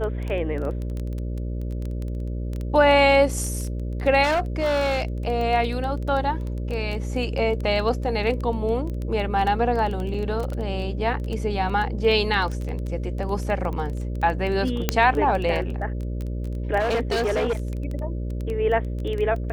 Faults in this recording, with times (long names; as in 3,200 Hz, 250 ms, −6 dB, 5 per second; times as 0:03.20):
mains buzz 60 Hz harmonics 10 −28 dBFS
surface crackle 12 per second −26 dBFS
0:04.23–0:05.05: clipping −18.5 dBFS
0:10.14: drop-out 4.5 ms
0:14.89: click −3 dBFS
0:16.79–0:17.55: clipping −19.5 dBFS